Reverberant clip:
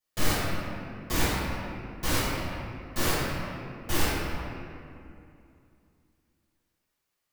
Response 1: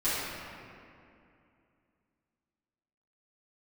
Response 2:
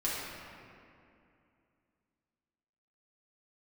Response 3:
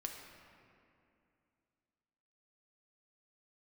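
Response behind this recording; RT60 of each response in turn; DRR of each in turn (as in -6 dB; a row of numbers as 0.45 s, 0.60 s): 1; 2.6 s, 2.6 s, 2.6 s; -14.0 dB, -7.5 dB, 1.5 dB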